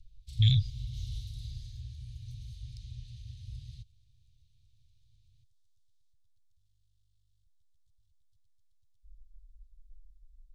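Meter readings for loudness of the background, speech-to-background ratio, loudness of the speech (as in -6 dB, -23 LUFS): -44.0 LUFS, 17.0 dB, -27.0 LUFS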